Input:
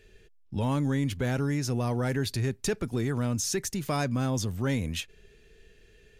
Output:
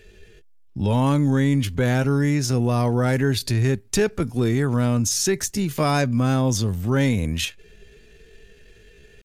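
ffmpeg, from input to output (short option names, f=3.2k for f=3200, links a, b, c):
-af "atempo=0.67,volume=8dB"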